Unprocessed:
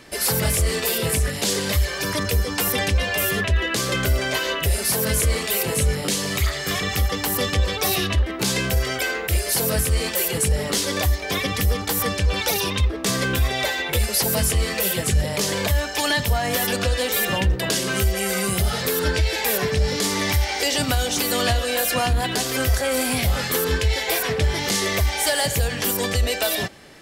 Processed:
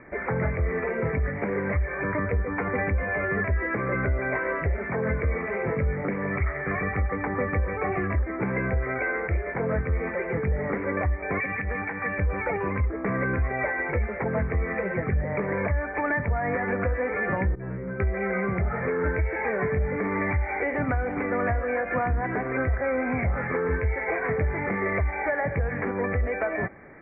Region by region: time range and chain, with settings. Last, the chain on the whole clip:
11.4–12.18 weighting filter D + compressor 3:1, threshold -21 dBFS + comb 1.2 ms, depth 32%
17.55–18 tilt -2.5 dB/oct + metallic resonator 62 Hz, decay 0.77 s, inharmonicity 0.002
whole clip: Chebyshev low-pass 2300 Hz, order 8; compressor 2.5:1, threshold -23 dBFS

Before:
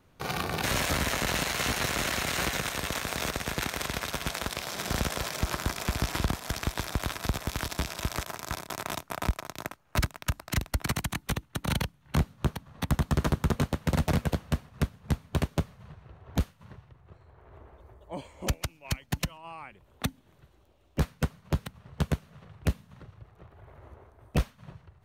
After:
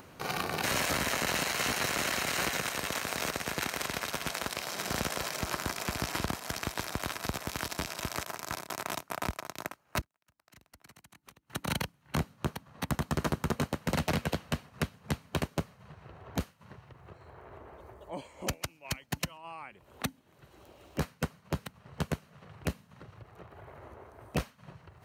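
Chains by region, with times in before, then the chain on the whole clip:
10.01–11.5 compressor 1.5:1, threshold -36 dBFS + flipped gate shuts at -33 dBFS, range -34 dB
13.89–15.41 dynamic EQ 3200 Hz, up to +5 dB, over -48 dBFS, Q 0.87 + three-band squash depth 40%
whole clip: HPF 190 Hz 6 dB/oct; notch 3500 Hz, Q 14; upward compressor, threshold -40 dBFS; gain -1 dB

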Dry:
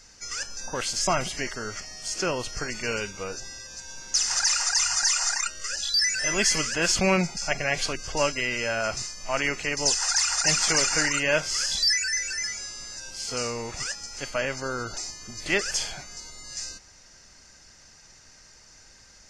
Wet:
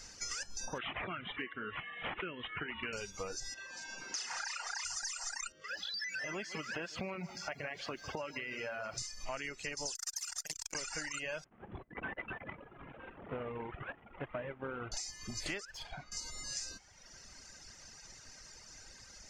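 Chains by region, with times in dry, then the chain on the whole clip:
0.78–2.93 HPF 150 Hz + band shelf 710 Hz -10 dB 1.3 oct + careless resampling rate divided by 6×, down none, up filtered
3.54–4.85 three-band isolator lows -19 dB, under 180 Hz, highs -13 dB, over 3700 Hz + doubler 35 ms -2 dB
5.52–8.98 compressor 3:1, threshold -29 dBFS + BPF 120–2900 Hz + lo-fi delay 0.151 s, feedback 35%, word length 10-bit, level -10 dB
9.95–10.75 high shelf 4000 Hz +11 dB + core saturation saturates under 3900 Hz
11.44–14.92 CVSD 16 kbps + HPF 73 Hz 6 dB/oct + high shelf 2200 Hz -11.5 dB
15.65–16.12 LPF 3100 Hz + tube stage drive 29 dB, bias 0.6
whole clip: reverb removal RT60 1.1 s; compressor 16:1, threshold -38 dBFS; gain +1 dB

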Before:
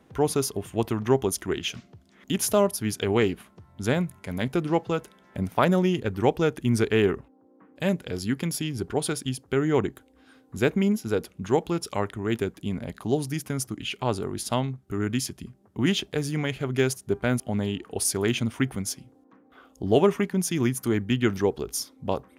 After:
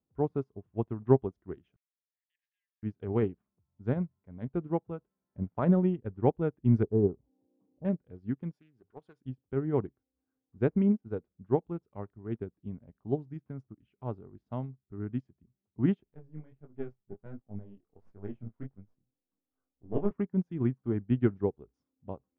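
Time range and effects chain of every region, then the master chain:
1.76–2.83 brick-wall FIR high-pass 1600 Hz + air absorption 290 m
6.83–7.85 inverse Chebyshev low-pass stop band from 3700 Hz, stop band 70 dB + upward compressor, threshold -30 dBFS
8.53–9.21 tilt +3.5 dB/oct + notches 50/100 Hz + Doppler distortion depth 0.2 ms
16.04–20.11 half-wave gain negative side -7 dB + high shelf 2500 Hz -5 dB + chorus 1.4 Hz, delay 19 ms, depth 6.5 ms
whole clip: LPF 1200 Hz 12 dB/oct; low shelf 270 Hz +9 dB; upward expander 2.5:1, over -33 dBFS; gain -3.5 dB

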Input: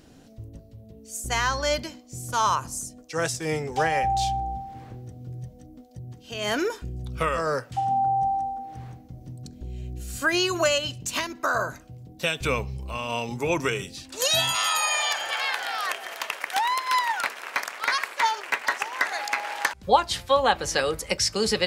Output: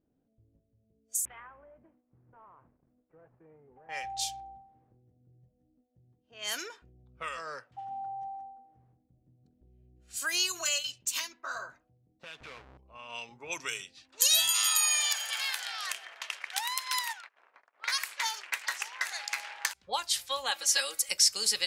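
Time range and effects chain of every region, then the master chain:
1.25–3.89 CVSD 16 kbps + LPF 1900 Hz + compressor 10:1, threshold -31 dBFS
10.52–11.69 bell 11000 Hz -5 dB 0.54 oct + notch comb 150 Hz
12.23–12.78 half-waves squared off + high shelf 7200 Hz -9 dB + compressor 8:1, threshold -28 dBFS
17.13–17.79 compressor 5:1, threshold -35 dBFS + gate -42 dBFS, range -17 dB + high shelf 10000 Hz -3.5 dB
20.51–21.09 HPF 420 Hz 6 dB/oct + comb 3.6 ms, depth 93%
whole clip: pre-emphasis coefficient 0.97; low-pass opened by the level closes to 340 Hz, open at -33 dBFS; gain +3.5 dB

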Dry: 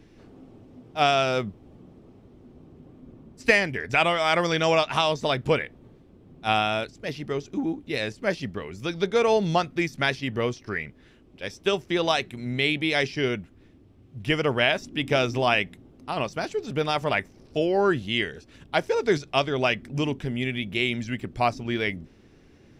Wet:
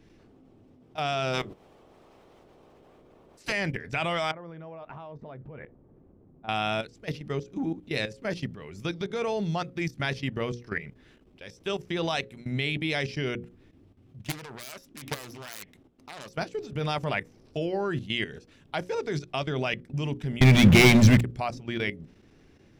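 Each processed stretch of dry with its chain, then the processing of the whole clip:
1.33–3.51 spectral limiter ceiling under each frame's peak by 21 dB + bell 390 Hz +5.5 dB 0.93 oct + notches 60/120/180/240/300/360/420/480/540 Hz
4.31–6.49 LPF 1100 Hz + compressor 4:1, threshold -33 dBFS
14.19–16.31 self-modulated delay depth 0.76 ms + low shelf 390 Hz -6.5 dB + compressor 5:1, threshold -25 dBFS
20.41–21.21 low shelf 160 Hz +9.5 dB + sample leveller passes 5
whole clip: dynamic EQ 150 Hz, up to +7 dB, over -45 dBFS, Q 2; level quantiser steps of 14 dB; notches 60/120/180/240/300/360/420/480/540 Hz

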